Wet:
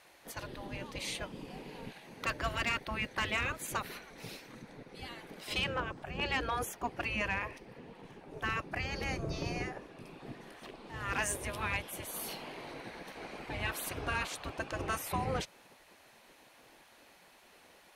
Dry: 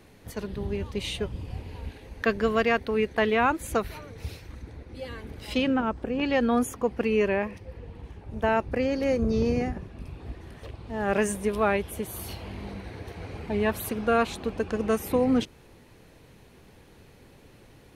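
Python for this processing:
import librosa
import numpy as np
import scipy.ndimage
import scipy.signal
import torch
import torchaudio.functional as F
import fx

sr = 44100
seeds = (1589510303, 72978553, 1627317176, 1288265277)

y = fx.spec_gate(x, sr, threshold_db=-10, keep='weak')
y = fx.cheby_harmonics(y, sr, harmonics=(5, 7), levels_db=(-10, -18), full_scale_db=-17.0)
y = y * librosa.db_to_amplitude(-5.0)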